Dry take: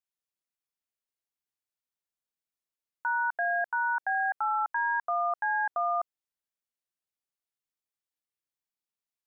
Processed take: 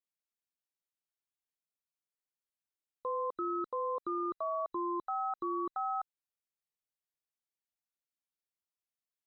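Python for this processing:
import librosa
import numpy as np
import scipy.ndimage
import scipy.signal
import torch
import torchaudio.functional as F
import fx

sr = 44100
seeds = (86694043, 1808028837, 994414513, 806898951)

y = fx.band_invert(x, sr, width_hz=2000)
y = y * librosa.db_to_amplitude(-6.5)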